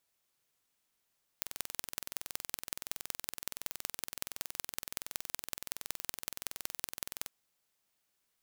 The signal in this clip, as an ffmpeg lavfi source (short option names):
-f lavfi -i "aevalsrc='0.473*eq(mod(n,2061),0)*(0.5+0.5*eq(mod(n,8244),0))':d=5.86:s=44100"